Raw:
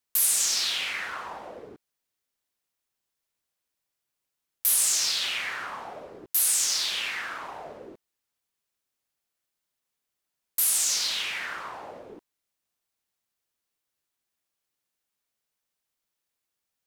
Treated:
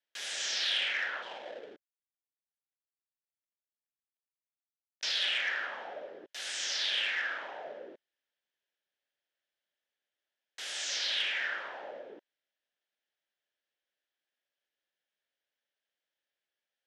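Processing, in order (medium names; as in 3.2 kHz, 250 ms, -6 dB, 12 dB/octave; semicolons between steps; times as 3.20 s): 1.22–5.03 s: dead-time distortion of 0.21 ms; cabinet simulation 310–5200 Hz, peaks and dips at 570 Hz +7 dB, 1.1 kHz -9 dB, 1.7 kHz +9 dB, 3.2 kHz +6 dB, 4.5 kHz -4 dB; transformer saturation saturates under 1.8 kHz; trim -4 dB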